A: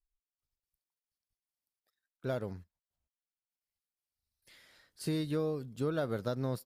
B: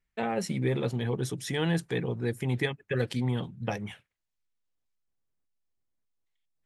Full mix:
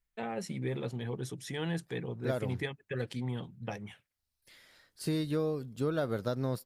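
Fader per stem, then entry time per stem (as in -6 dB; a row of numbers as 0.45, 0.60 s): +1.5, -7.0 dB; 0.00, 0.00 s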